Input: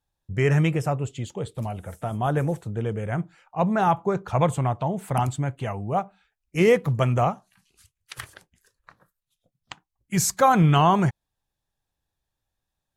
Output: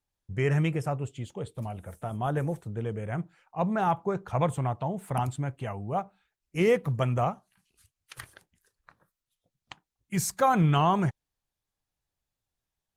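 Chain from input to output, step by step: trim -5 dB; Opus 32 kbps 48 kHz

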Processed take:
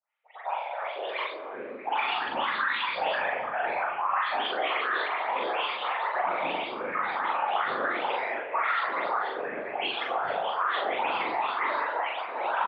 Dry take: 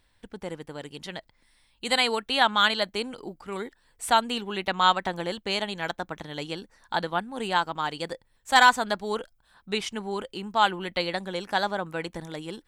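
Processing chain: delay that grows with frequency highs late, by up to 276 ms; compression 2:1, threshold -36 dBFS, peak gain reduction 13 dB; spectral noise reduction 20 dB; on a send at -7 dB: reverberation RT60 0.55 s, pre-delay 6 ms; on the sum: mistuned SSB +360 Hz 310–2700 Hz; ever faster or slower copies 324 ms, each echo -6 st, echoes 3, each echo -6 dB; peak limiter -30 dBFS, peak gain reduction 11.5 dB; whisper effect; doubling 41 ms -2 dB; feedback echo behind a low-pass 72 ms, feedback 77%, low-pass 1.8 kHz, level -13.5 dB; trim +7.5 dB

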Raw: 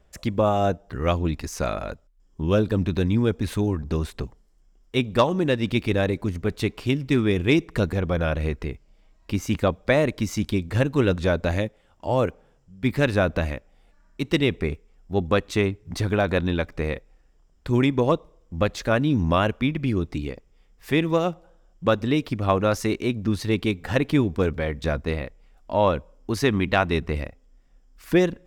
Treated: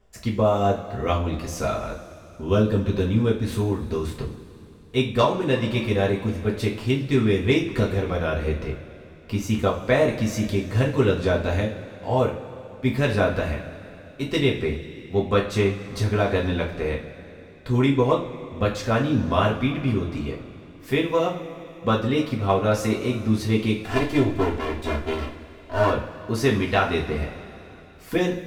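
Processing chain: 23.78–25.90 s: comb filter that takes the minimum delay 2.9 ms; two-slope reverb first 0.34 s, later 3.4 s, from -19 dB, DRR -3.5 dB; trim -4.5 dB

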